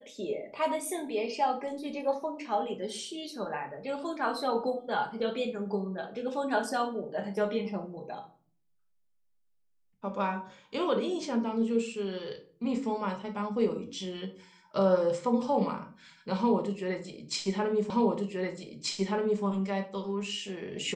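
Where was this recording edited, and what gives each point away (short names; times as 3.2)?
17.9 repeat of the last 1.53 s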